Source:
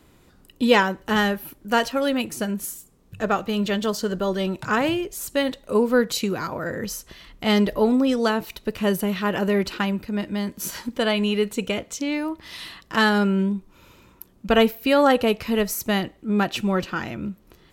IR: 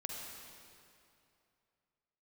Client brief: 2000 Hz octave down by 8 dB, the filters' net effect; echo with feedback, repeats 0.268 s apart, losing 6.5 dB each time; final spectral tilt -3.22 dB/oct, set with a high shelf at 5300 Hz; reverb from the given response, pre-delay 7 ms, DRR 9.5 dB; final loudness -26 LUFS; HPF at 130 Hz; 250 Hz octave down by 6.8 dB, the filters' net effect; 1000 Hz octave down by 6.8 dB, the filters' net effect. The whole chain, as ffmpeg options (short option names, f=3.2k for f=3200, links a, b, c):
-filter_complex "[0:a]highpass=130,equalizer=f=250:t=o:g=-7.5,equalizer=f=1k:t=o:g=-6.5,equalizer=f=2k:t=o:g=-9,highshelf=f=5.3k:g=7,aecho=1:1:268|536|804|1072|1340|1608:0.473|0.222|0.105|0.0491|0.0231|0.0109,asplit=2[a][b];[1:a]atrim=start_sample=2205,adelay=7[c];[b][c]afir=irnorm=-1:irlink=0,volume=-9dB[d];[a][d]amix=inputs=2:normalize=0"